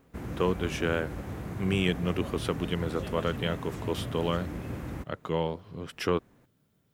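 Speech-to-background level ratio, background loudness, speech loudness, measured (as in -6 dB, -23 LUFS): 6.5 dB, -38.0 LUFS, -31.5 LUFS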